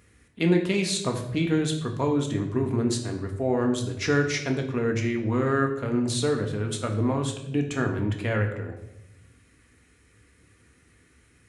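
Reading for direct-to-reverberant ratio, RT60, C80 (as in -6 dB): 2.5 dB, 0.85 s, 10.5 dB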